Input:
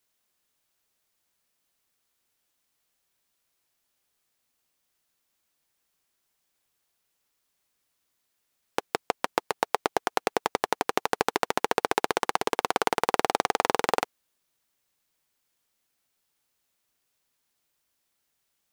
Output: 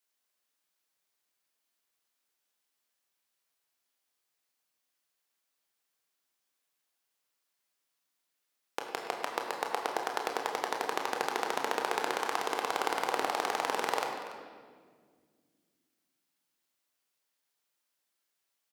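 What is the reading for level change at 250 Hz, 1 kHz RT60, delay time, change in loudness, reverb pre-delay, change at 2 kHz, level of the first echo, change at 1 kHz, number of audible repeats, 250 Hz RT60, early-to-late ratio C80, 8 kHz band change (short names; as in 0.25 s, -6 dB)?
-7.5 dB, 1.5 s, 0.286 s, -5.0 dB, 22 ms, -4.5 dB, -15.5 dB, -5.0 dB, 1, 3.1 s, 4.5 dB, -5.0 dB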